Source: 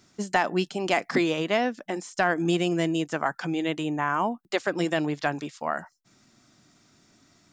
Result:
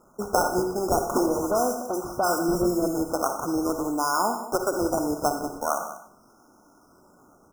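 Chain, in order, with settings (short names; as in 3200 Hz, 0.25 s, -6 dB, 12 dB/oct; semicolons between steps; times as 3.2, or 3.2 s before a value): Bessel high-pass 310 Hz, order 4; in parallel at -1 dB: compressor, threshold -32 dBFS, peak gain reduction 13 dB; on the sum: decimation with a swept rate 15×, swing 60% 0.42 Hz; 1.26–2.88 dispersion highs, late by 53 ms, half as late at 2600 Hz; brick-wall FIR band-stop 1500–5000 Hz; echo 0.19 s -14.5 dB; on a send at -6 dB: reverb RT60 0.55 s, pre-delay 42 ms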